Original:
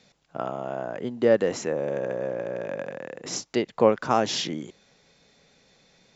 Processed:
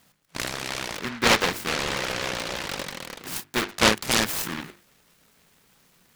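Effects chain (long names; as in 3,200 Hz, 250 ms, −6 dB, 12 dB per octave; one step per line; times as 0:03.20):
mains-hum notches 50/100/150/200/250/300/350/400/450 Hz
short delay modulated by noise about 1,500 Hz, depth 0.44 ms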